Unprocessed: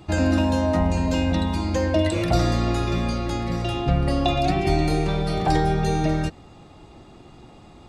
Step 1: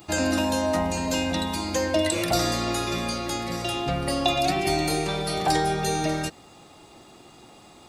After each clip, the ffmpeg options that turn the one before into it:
ffmpeg -i in.wav -af "aemphasis=mode=production:type=bsi" out.wav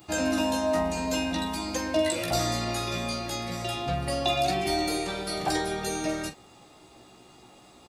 ffmpeg -i in.wav -af "aecho=1:1:16|43:0.596|0.299,volume=-5dB" out.wav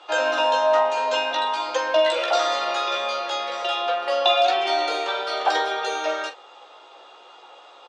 ffmpeg -i in.wav -af "highpass=frequency=490:width=0.5412,highpass=frequency=490:width=1.3066,equalizer=frequency=500:width_type=q:width=4:gain=7,equalizer=frequency=940:width_type=q:width=4:gain=6,equalizer=frequency=1400:width_type=q:width=4:gain=8,equalizer=frequency=2100:width_type=q:width=4:gain=-3,equalizer=frequency=3200:width_type=q:width=4:gain=7,equalizer=frequency=4700:width_type=q:width=4:gain=-6,lowpass=frequency=5300:width=0.5412,lowpass=frequency=5300:width=1.3066,volume=5.5dB" out.wav

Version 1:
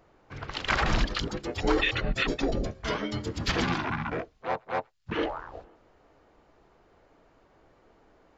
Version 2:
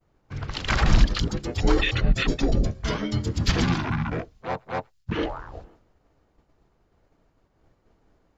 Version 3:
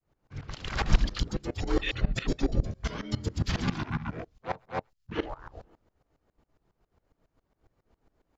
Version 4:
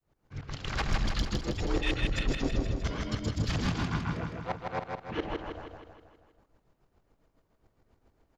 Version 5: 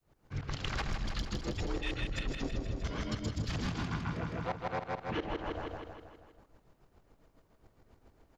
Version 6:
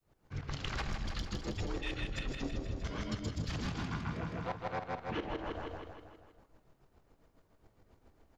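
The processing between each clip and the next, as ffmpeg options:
ffmpeg -i in.wav -af "agate=range=-33dB:threshold=-53dB:ratio=3:detection=peak,bass=frequency=250:gain=10,treble=frequency=4000:gain=6" out.wav
ffmpeg -i in.wav -af "aeval=exprs='val(0)*pow(10,-20*if(lt(mod(-7.3*n/s,1),2*abs(-7.3)/1000),1-mod(-7.3*n/s,1)/(2*abs(-7.3)/1000),(mod(-7.3*n/s,1)-2*abs(-7.3)/1000)/(1-2*abs(-7.3)/1000))/20)':channel_layout=same" out.wav
ffmpeg -i in.wav -filter_complex "[0:a]asoftclip=type=tanh:threshold=-22dB,asplit=2[link_01][link_02];[link_02]aecho=0:1:159|318|477|636|795|954|1113:0.668|0.361|0.195|0.105|0.0568|0.0307|0.0166[link_03];[link_01][link_03]amix=inputs=2:normalize=0" out.wav
ffmpeg -i in.wav -af "acompressor=threshold=-37dB:ratio=6,volume=4.5dB" out.wav
ffmpeg -i in.wav -af "flanger=delay=9.1:depth=6.6:regen=79:speed=0.65:shape=triangular,volume=2.5dB" out.wav

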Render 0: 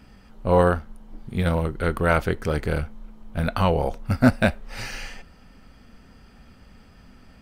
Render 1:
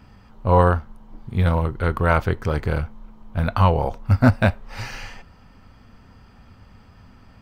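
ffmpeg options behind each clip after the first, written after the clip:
ffmpeg -i in.wav -af "equalizer=frequency=100:width_type=o:width=0.67:gain=10,equalizer=frequency=1000:width_type=o:width=0.67:gain=7,equalizer=frequency=10000:width_type=o:width=0.67:gain=-7,volume=-1dB" out.wav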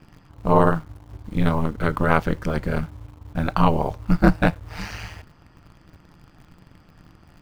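ffmpeg -i in.wav -filter_complex "[0:a]aeval=exprs='val(0)*sin(2*PI*80*n/s)':channel_layout=same,asplit=2[link_01][link_02];[link_02]acrusher=bits=6:mix=0:aa=0.000001,volume=-10.5dB[link_03];[link_01][link_03]amix=inputs=2:normalize=0" out.wav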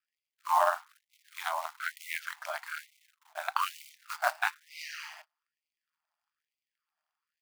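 ffmpeg -i in.wav -af "acrusher=bits=6:mode=log:mix=0:aa=0.000001,agate=range=-25dB:threshold=-40dB:ratio=16:detection=peak,afftfilt=real='re*gte(b*sr/1024,570*pow(2000/570,0.5+0.5*sin(2*PI*1.1*pts/sr)))':imag='im*gte(b*sr/1024,570*pow(2000/570,0.5+0.5*sin(2*PI*1.1*pts/sr)))':win_size=1024:overlap=0.75,volume=-4dB" out.wav

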